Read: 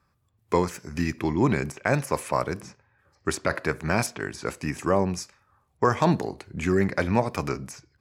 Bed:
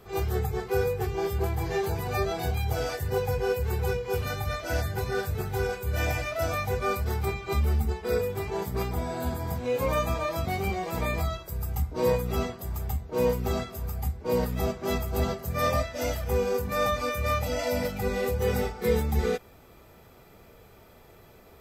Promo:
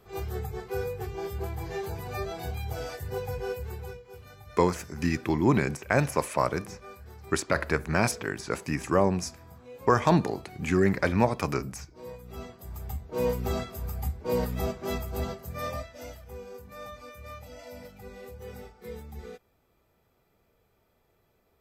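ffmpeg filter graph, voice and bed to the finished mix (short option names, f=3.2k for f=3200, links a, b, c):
-filter_complex "[0:a]adelay=4050,volume=-0.5dB[a];[1:a]volume=11dB,afade=t=out:st=3.47:d=0.6:silence=0.237137,afade=t=in:st=12.18:d=1.26:silence=0.141254,afade=t=out:st=14.49:d=1.76:silence=0.177828[b];[a][b]amix=inputs=2:normalize=0"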